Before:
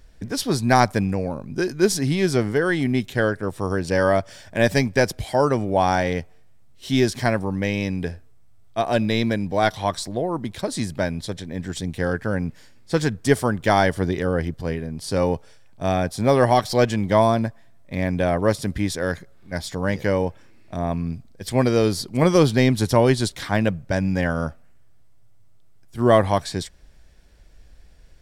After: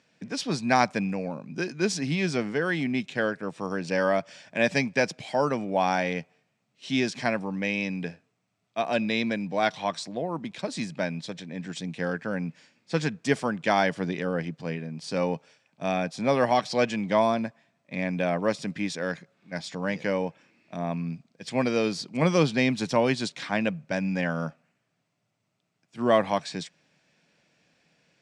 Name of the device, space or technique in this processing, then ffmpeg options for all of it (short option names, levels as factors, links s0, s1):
television speaker: -af "highpass=f=160:w=0.5412,highpass=f=160:w=1.3066,equalizer=f=160:t=q:w=4:g=4,equalizer=f=380:t=q:w=4:g=-5,equalizer=f=2500:t=q:w=4:g=8,lowpass=f=7500:w=0.5412,lowpass=f=7500:w=1.3066,volume=0.562"